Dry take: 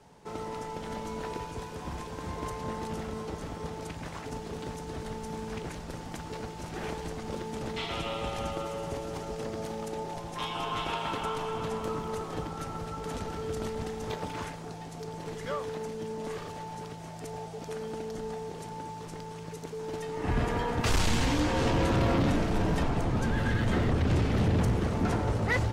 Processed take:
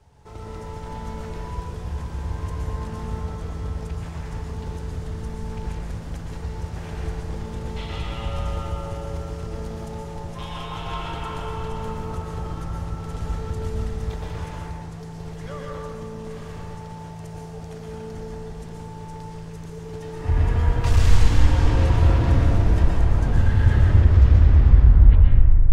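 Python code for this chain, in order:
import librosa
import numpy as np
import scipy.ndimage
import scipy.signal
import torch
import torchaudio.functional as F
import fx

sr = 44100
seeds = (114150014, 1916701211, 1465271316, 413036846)

y = fx.tape_stop_end(x, sr, length_s=1.99)
y = fx.low_shelf_res(y, sr, hz=130.0, db=13.0, q=1.5)
y = fx.rev_plate(y, sr, seeds[0], rt60_s=1.8, hf_ratio=0.45, predelay_ms=105, drr_db=-2.5)
y = F.gain(torch.from_numpy(y), -4.0).numpy()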